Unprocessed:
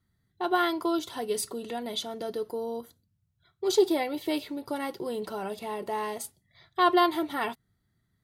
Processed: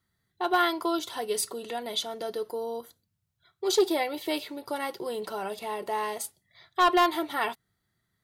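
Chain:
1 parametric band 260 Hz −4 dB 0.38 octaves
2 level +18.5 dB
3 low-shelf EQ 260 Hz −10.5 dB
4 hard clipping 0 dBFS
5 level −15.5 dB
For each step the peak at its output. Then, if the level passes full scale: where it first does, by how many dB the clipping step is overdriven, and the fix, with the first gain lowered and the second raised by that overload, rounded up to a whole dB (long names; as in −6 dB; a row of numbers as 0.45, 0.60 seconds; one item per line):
−10.5, +8.0, +6.5, 0.0, −15.5 dBFS
step 2, 6.5 dB
step 2 +11.5 dB, step 5 −8.5 dB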